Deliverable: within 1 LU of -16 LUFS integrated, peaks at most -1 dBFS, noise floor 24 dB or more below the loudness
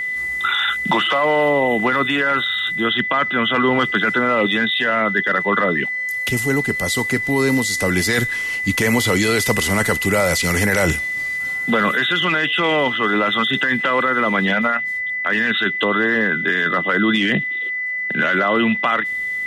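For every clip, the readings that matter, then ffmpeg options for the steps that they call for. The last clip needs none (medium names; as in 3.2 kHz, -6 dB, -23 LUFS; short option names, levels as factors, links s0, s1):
steady tone 2 kHz; tone level -21 dBFS; loudness -17.5 LUFS; peak level -4.5 dBFS; loudness target -16.0 LUFS
-> -af "bandreject=f=2000:w=30"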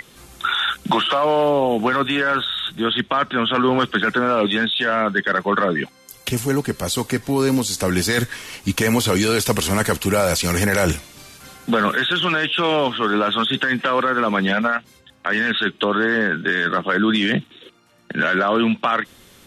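steady tone not found; loudness -19.5 LUFS; peak level -5.0 dBFS; loudness target -16.0 LUFS
-> -af "volume=1.5"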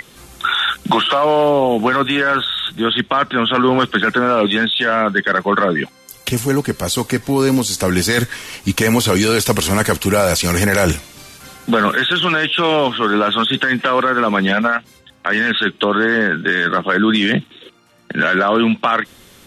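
loudness -16.0 LUFS; peak level -1.5 dBFS; noise floor -47 dBFS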